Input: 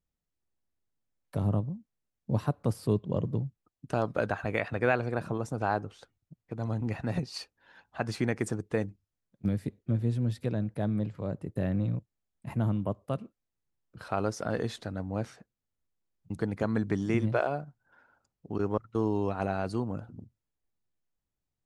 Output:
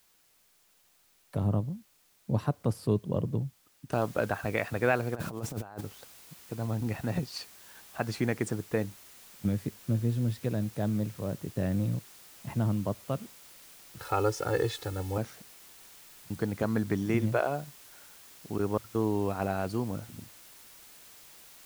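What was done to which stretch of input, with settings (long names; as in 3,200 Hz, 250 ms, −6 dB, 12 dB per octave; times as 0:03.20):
0:03.92: noise floor change −66 dB −53 dB
0:05.15–0:05.81: compressor whose output falls as the input rises −36 dBFS, ratio −0.5
0:13.99–0:15.18: comb filter 2.3 ms, depth 100%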